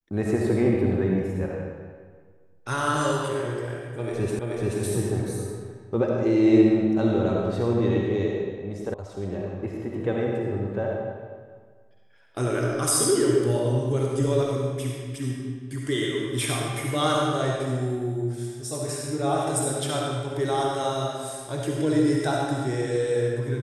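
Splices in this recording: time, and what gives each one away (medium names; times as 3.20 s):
4.39 s: repeat of the last 0.43 s
8.94 s: sound stops dead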